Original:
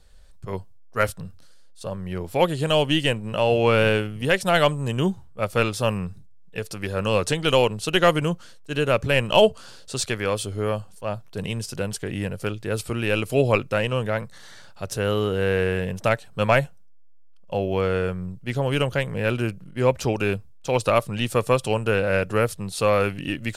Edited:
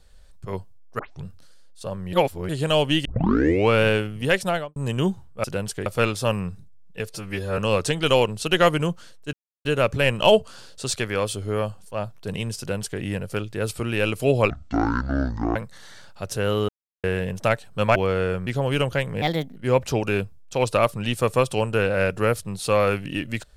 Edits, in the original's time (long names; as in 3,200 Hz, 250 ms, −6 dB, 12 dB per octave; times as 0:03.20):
0:00.99: tape start 0.25 s
0:02.13–0:02.49: reverse
0:03.05: tape start 0.64 s
0:04.38–0:04.76: fade out and dull
0:06.68–0:07.00: time-stretch 1.5×
0:08.75: splice in silence 0.32 s
0:11.69–0:12.11: duplicate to 0:05.44
0:13.60–0:14.16: play speed 53%
0:15.29–0:15.64: silence
0:16.56–0:17.70: remove
0:18.21–0:18.47: remove
0:19.22–0:19.69: play speed 137%